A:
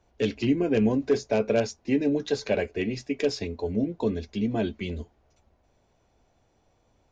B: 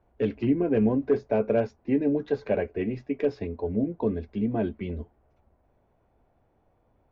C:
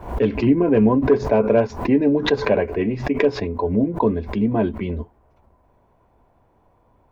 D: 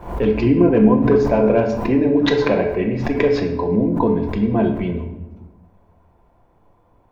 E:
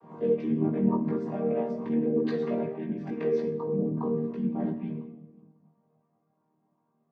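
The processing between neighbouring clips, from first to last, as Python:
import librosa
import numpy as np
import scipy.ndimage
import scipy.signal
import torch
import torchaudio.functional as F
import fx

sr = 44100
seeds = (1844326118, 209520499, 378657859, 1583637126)

y1 = scipy.signal.sosfilt(scipy.signal.butter(2, 1600.0, 'lowpass', fs=sr, output='sos'), x)
y2 = fx.peak_eq(y1, sr, hz=1000.0, db=10.5, octaves=0.22)
y2 = fx.pre_swell(y2, sr, db_per_s=110.0)
y2 = y2 * librosa.db_to_amplitude(7.0)
y3 = fx.room_shoebox(y2, sr, seeds[0], volume_m3=420.0, walls='mixed', distance_m=0.83)
y4 = fx.chord_vocoder(y3, sr, chord='major triad', root=51)
y4 = fx.chorus_voices(y4, sr, voices=4, hz=0.4, base_ms=18, depth_ms=1.5, mix_pct=45)
y4 = y4 * librosa.db_to_amplitude(-6.5)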